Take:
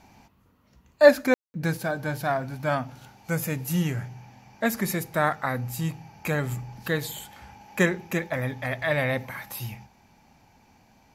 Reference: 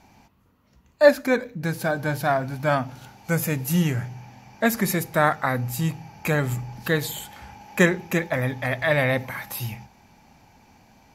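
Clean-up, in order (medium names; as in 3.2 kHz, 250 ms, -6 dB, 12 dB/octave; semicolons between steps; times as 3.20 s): room tone fill 1.34–1.54 s; gain correction +4 dB, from 1.77 s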